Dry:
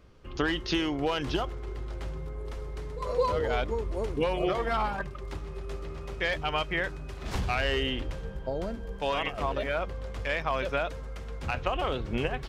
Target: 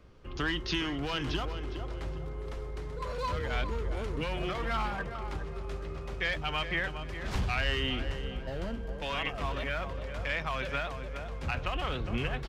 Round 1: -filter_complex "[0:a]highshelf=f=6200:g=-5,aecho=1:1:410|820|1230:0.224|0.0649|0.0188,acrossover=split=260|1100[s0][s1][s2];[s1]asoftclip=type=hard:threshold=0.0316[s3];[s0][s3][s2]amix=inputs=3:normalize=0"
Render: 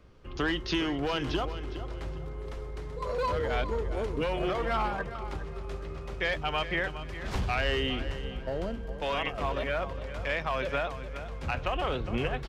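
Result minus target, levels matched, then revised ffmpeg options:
hard clipper: distortion -8 dB
-filter_complex "[0:a]highshelf=f=6200:g=-5,aecho=1:1:410|820|1230:0.224|0.0649|0.0188,acrossover=split=260|1100[s0][s1][s2];[s1]asoftclip=type=hard:threshold=0.00944[s3];[s0][s3][s2]amix=inputs=3:normalize=0"

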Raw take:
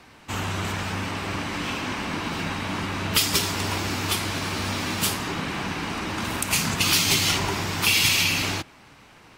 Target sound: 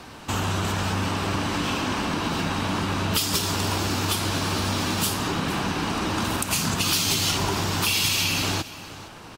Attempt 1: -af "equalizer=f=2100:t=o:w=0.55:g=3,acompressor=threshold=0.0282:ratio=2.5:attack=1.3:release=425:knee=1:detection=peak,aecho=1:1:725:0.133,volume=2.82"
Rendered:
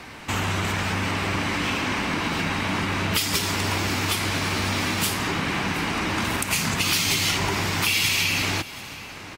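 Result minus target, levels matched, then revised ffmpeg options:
echo 259 ms late; 2 kHz band +4.0 dB
-af "equalizer=f=2100:t=o:w=0.55:g=-7,acompressor=threshold=0.0282:ratio=2.5:attack=1.3:release=425:knee=1:detection=peak,aecho=1:1:466:0.133,volume=2.82"

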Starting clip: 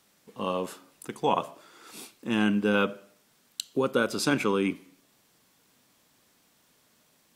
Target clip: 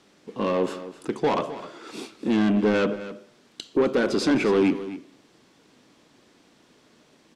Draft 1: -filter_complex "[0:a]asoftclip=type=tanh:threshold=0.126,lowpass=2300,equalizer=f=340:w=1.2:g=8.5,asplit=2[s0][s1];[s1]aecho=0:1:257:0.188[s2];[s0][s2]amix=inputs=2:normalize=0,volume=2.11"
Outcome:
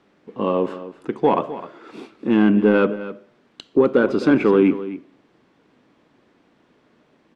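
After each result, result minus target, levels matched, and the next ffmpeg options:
4 kHz band -9.0 dB; saturation: distortion -9 dB
-filter_complex "[0:a]asoftclip=type=tanh:threshold=0.126,lowpass=5500,equalizer=f=340:w=1.2:g=8.5,asplit=2[s0][s1];[s1]aecho=0:1:257:0.188[s2];[s0][s2]amix=inputs=2:normalize=0,volume=2.11"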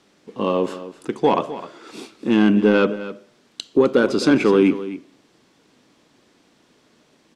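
saturation: distortion -9 dB
-filter_complex "[0:a]asoftclip=type=tanh:threshold=0.0376,lowpass=5500,equalizer=f=340:w=1.2:g=8.5,asplit=2[s0][s1];[s1]aecho=0:1:257:0.188[s2];[s0][s2]amix=inputs=2:normalize=0,volume=2.11"

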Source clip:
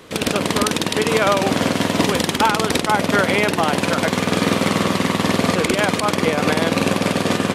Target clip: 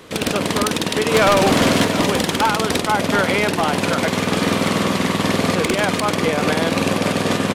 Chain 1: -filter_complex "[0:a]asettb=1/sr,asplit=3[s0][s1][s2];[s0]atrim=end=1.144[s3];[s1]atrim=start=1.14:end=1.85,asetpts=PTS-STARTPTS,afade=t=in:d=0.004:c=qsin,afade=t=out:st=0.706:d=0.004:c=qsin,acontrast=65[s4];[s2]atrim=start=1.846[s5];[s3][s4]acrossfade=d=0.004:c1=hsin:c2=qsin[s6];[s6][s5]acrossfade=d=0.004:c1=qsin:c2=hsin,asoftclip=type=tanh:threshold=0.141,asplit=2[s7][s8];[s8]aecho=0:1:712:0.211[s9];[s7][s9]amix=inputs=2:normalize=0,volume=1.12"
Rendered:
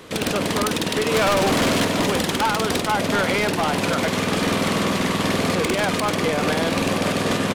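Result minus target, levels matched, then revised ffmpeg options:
saturation: distortion +7 dB
-filter_complex "[0:a]asettb=1/sr,asplit=3[s0][s1][s2];[s0]atrim=end=1.144[s3];[s1]atrim=start=1.14:end=1.85,asetpts=PTS-STARTPTS,afade=t=in:d=0.004:c=qsin,afade=t=out:st=0.706:d=0.004:c=qsin,acontrast=65[s4];[s2]atrim=start=1.846[s5];[s3][s4]acrossfade=d=0.004:c1=hsin:c2=qsin[s6];[s6][s5]acrossfade=d=0.004:c1=qsin:c2=hsin,asoftclip=type=tanh:threshold=0.316,asplit=2[s7][s8];[s8]aecho=0:1:712:0.211[s9];[s7][s9]amix=inputs=2:normalize=0,volume=1.12"

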